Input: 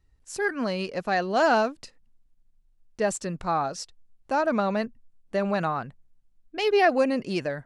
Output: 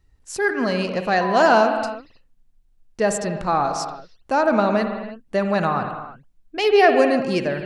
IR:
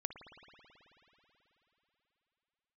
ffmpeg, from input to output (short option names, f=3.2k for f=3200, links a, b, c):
-filter_complex "[1:a]atrim=start_sample=2205,afade=t=out:st=0.39:d=0.01,atrim=end_sample=17640[a];[0:a][a]afir=irnorm=-1:irlink=0,asettb=1/sr,asplit=3[b][c][d];[b]atrim=end=1.214[e];[c]atrim=start=1.21:end=1.61,asetpts=PTS-STARTPTS,afade=t=in:d=0.004:c=qsin,afade=t=out:st=0.396:d=0.004:c=qsin,aeval=exprs='val(0)+0.0251*sin(2*PI*1000*n/s)':c=same[f];[d]atrim=start=1.606[g];[e][f]acrossfade=d=0.004:c1=hsin:c2=qsin[h];[h][g]acrossfade=d=0.004:c1=qsin:c2=hsin,volume=7.5dB"